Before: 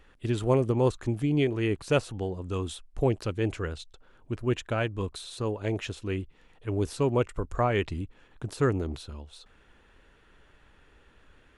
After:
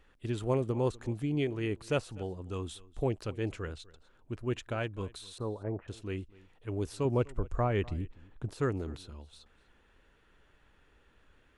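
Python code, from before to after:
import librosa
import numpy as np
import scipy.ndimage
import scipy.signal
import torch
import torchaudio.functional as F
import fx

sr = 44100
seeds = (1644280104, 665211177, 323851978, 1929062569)

y = fx.lowpass(x, sr, hz=1400.0, slope=24, at=(5.38, 5.88))
y = fx.tilt_eq(y, sr, slope=-1.5, at=(7.05, 8.56))
y = y + 10.0 ** (-22.0 / 20.0) * np.pad(y, (int(249 * sr / 1000.0), 0))[:len(y)]
y = y * librosa.db_to_amplitude(-6.0)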